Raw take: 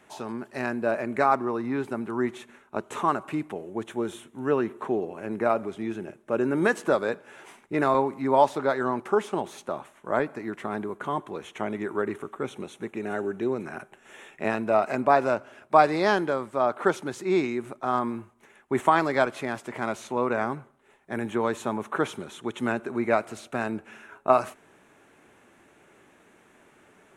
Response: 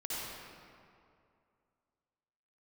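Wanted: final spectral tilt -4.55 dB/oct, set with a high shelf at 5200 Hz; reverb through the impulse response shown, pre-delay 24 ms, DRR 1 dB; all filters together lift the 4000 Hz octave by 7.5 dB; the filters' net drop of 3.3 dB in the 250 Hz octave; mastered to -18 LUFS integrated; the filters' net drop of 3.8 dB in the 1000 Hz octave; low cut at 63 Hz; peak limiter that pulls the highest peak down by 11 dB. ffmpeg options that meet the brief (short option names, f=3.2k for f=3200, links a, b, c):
-filter_complex "[0:a]highpass=63,equalizer=f=250:t=o:g=-4,equalizer=f=1k:t=o:g=-5.5,equalizer=f=4k:t=o:g=7,highshelf=f=5.2k:g=6,alimiter=limit=-18.5dB:level=0:latency=1,asplit=2[a][b];[1:a]atrim=start_sample=2205,adelay=24[c];[b][c]afir=irnorm=-1:irlink=0,volume=-4.5dB[d];[a][d]amix=inputs=2:normalize=0,volume=12dB"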